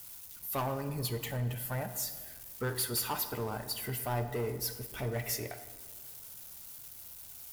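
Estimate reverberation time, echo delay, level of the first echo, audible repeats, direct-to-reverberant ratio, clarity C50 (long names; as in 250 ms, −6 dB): 1.7 s, no echo audible, no echo audible, no echo audible, 9.0 dB, 10.5 dB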